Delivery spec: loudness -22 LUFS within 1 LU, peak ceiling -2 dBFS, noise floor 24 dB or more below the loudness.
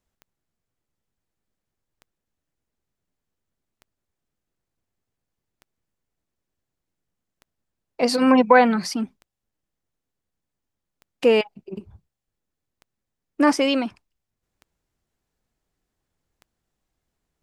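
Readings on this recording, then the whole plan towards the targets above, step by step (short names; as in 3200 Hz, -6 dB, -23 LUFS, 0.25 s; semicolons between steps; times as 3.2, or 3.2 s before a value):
clicks 10; loudness -20.0 LUFS; peak -2.5 dBFS; loudness target -22.0 LUFS
-> de-click; gain -2 dB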